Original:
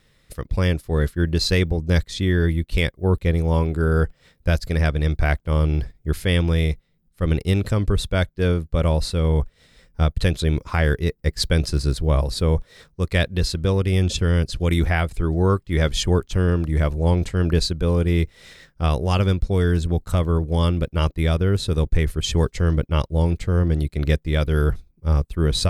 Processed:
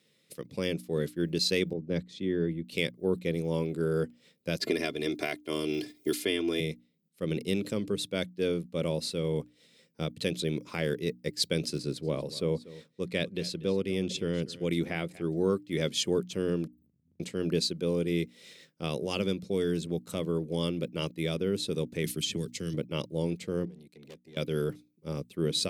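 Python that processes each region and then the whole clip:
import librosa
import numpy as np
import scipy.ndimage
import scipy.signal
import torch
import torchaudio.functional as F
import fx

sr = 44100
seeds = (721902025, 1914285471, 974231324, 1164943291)

y = fx.chain(x, sr, fx.lowpass(hz=1200.0, slope=6),
    fx.band_widen(depth_pct=40), at=(1.73, 2.65))
y = fx.chain(y, sr, fx.peak_eq(hz=79.0, db=-10.5, octaves=1.1),
    fx.comb(ms=2.9, depth=0.9),
    fx.band_squash(depth_pct=100), at=(4.6, 6.6))
y = fx.chain(y, sr, fx.high_shelf(hz=3700.0, db=-6.5),
    fx.echo_single(ms=240, db=-18.0), at=(11.78, 15.22))
y = fx.chain(y, sr, fx.cheby2_bandstop(low_hz=240.0, high_hz=7900.0, order=4, stop_db=80),
    fx.transient(attack_db=2, sustain_db=-11), at=(16.67, 17.2))
y = fx.chain(y, sr, fx.peak_eq(hz=750.0, db=-14.0, octaves=2.0),
    fx.band_squash(depth_pct=100), at=(22.04, 22.74))
y = fx.chain(y, sr, fx.level_steps(step_db=16),
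    fx.tube_stage(drive_db=35.0, bias=0.7), at=(23.65, 24.37))
y = scipy.signal.sosfilt(scipy.signal.butter(4, 170.0, 'highpass', fs=sr, output='sos'), y)
y = fx.band_shelf(y, sr, hz=1100.0, db=-9.5, octaves=1.7)
y = fx.hum_notches(y, sr, base_hz=60, count=5)
y = F.gain(torch.from_numpy(y), -5.0).numpy()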